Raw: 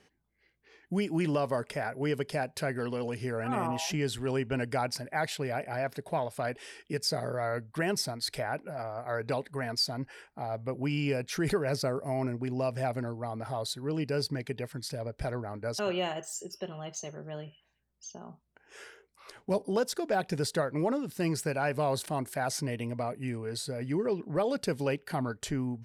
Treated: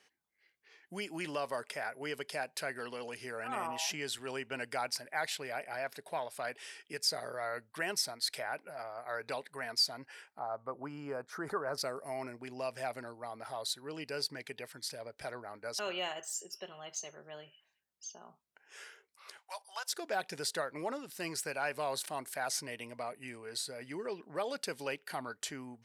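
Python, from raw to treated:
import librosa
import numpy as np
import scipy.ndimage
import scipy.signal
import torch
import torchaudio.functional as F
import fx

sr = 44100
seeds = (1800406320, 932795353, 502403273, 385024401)

y = fx.high_shelf_res(x, sr, hz=1800.0, db=-13.5, q=3.0, at=(10.39, 11.78))
y = fx.steep_highpass(y, sr, hz=750.0, slope=36, at=(19.37, 19.91), fade=0.02)
y = fx.highpass(y, sr, hz=1200.0, slope=6)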